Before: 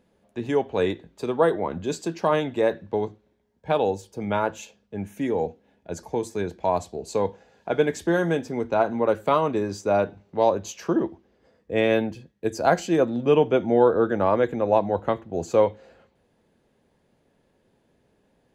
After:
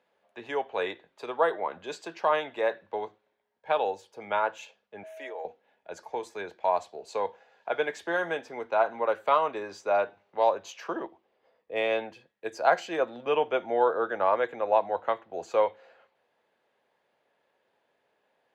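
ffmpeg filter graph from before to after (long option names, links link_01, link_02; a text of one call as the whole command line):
ffmpeg -i in.wav -filter_complex "[0:a]asettb=1/sr,asplit=3[link_01][link_02][link_03];[link_01]atrim=end=5.034[link_04];[link_02]atrim=start=5.03:end=5.45,asetpts=PTS-STARTPTS,afade=type=in:duration=0.004:curve=qsin,afade=type=out:start_time=0.416:duration=0.004:curve=qsin,highpass=frequency=350:width=0.5412,highpass=frequency=350:width=1.3066,acompressor=threshold=-30dB:ratio=4:attack=3.2:release=140:knee=1:detection=peak,aeval=exprs='val(0)+0.0112*sin(2*PI*640*n/s)':channel_layout=same[link_05];[link_03]atrim=start=5.446[link_06];[link_04][link_05]acrossfade=duration=0.004:curve1=hsin:curve2=qsin[link_07];[link_07][link_06]acrossfade=duration=0.004:curve1=qsin:curve2=hsin,asettb=1/sr,asplit=3[link_08][link_09][link_10];[link_08]atrim=end=11.064[link_11];[link_09]atrim=start=11.06:end=12,asetpts=PTS-STARTPTS,afade=type=in:duration=0.004:curve=qsin,afade=type=out:start_time=0.936:duration=0.004:curve=qsin,equalizer=frequency=1600:width_type=o:width=0.57:gain=-7,adynamicsmooth=sensitivity=5:basefreq=6800[link_12];[link_10]atrim=start=11.996[link_13];[link_11][link_12]acrossfade=duration=0.004:curve1=hsin:curve2=qsin[link_14];[link_14][link_13]acrossfade=duration=0.004:curve1=qsin:curve2=hsin,highpass=93,acrossover=split=530 4000:gain=0.0794 1 0.224[link_15][link_16][link_17];[link_15][link_16][link_17]amix=inputs=3:normalize=0" out.wav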